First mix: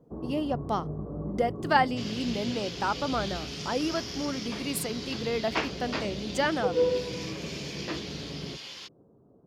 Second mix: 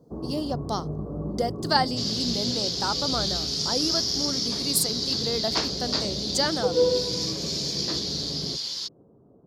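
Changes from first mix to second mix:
first sound +3.5 dB
master: add high shelf with overshoot 3,400 Hz +9 dB, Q 3

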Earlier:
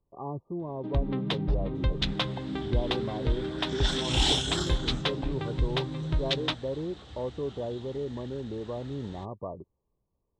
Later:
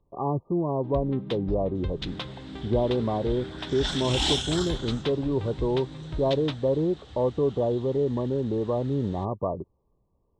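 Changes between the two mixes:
speech +9.0 dB
first sound −6.5 dB

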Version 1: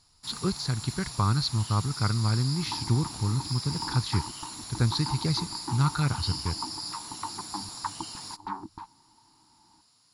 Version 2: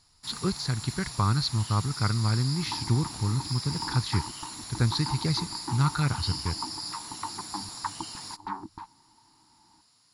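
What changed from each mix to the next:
master: add parametric band 1,900 Hz +3.5 dB 0.51 octaves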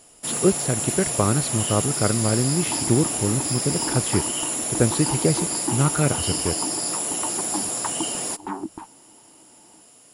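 first sound +7.5 dB
master: remove drawn EQ curve 110 Hz 0 dB, 600 Hz −20 dB, 940 Hz 0 dB, 1,400 Hz −3 dB, 2,100 Hz −3 dB, 3,000 Hz −9 dB, 4,300 Hz +10 dB, 8,200 Hz −13 dB, 12,000 Hz −9 dB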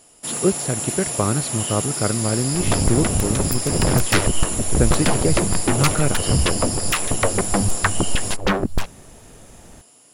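second sound: remove pair of resonant band-passes 530 Hz, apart 1.5 octaves

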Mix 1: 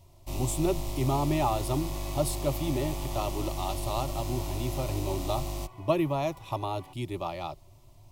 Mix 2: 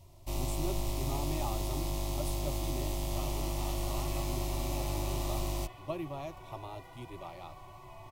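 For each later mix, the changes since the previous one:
speech −12.0 dB
second sound: entry +2.10 s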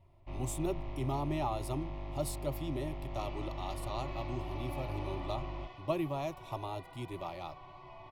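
speech +4.5 dB
first sound: add transistor ladder low-pass 2,700 Hz, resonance 30%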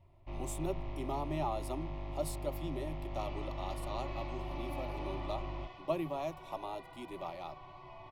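speech: add Chebyshev high-pass with heavy ripple 150 Hz, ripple 3 dB

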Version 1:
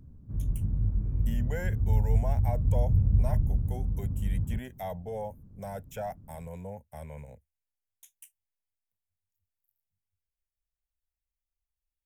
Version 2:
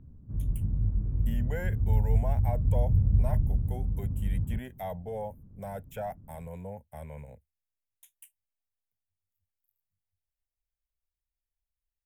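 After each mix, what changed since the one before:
background: add high-frequency loss of the air 350 metres
master: add parametric band 5,900 Hz −10 dB 0.67 octaves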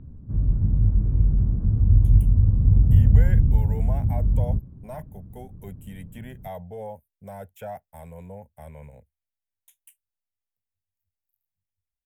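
speech: entry +1.65 s
background +8.5 dB

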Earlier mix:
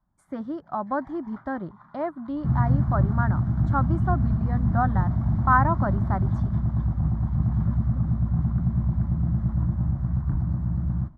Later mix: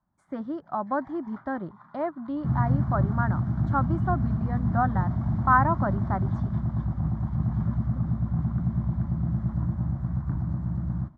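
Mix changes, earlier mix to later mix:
speech: add high-frequency loss of the air 71 metres
master: add high-pass filter 110 Hz 6 dB per octave

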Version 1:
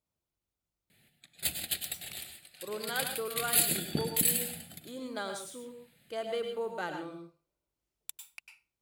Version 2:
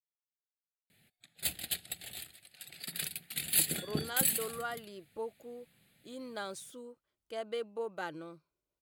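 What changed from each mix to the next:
speech: entry +1.20 s
reverb: off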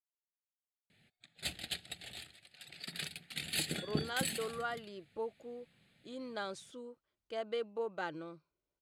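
master: add low-pass filter 5,900 Hz 12 dB per octave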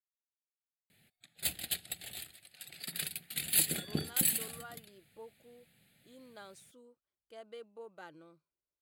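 speech −11.0 dB
master: remove low-pass filter 5,900 Hz 12 dB per octave

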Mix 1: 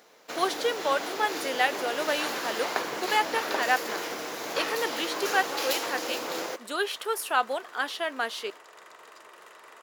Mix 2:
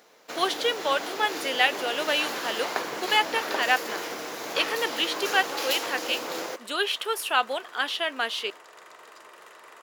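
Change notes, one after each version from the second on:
speech: add parametric band 2,900 Hz +8.5 dB 0.93 octaves
reverb: on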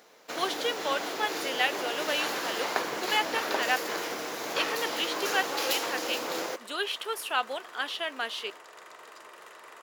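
speech −5.0 dB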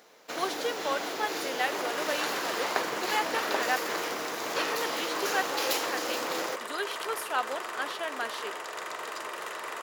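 speech: add parametric band 2,900 Hz −8.5 dB 0.93 octaves
second sound +11.5 dB

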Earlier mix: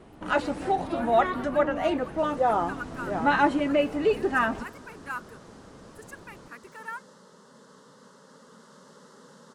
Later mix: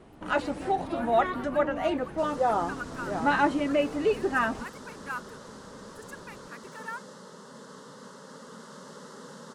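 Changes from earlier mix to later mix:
second sound +7.5 dB
reverb: off

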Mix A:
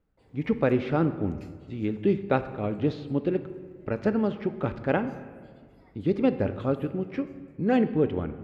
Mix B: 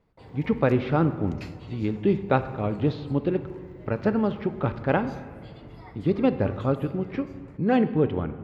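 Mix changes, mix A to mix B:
background +11.5 dB
master: add graphic EQ with 10 bands 125 Hz +5 dB, 1,000 Hz +5 dB, 4,000 Hz +4 dB, 8,000 Hz −4 dB, 16,000 Hz −6 dB

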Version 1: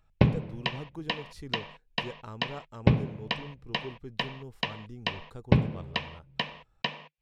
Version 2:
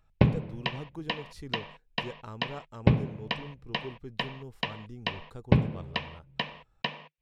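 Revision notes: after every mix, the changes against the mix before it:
background: add high-frequency loss of the air 70 metres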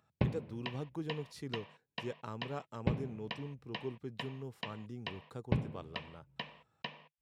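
speech: add high-pass filter 110 Hz 24 dB per octave
background −10.5 dB

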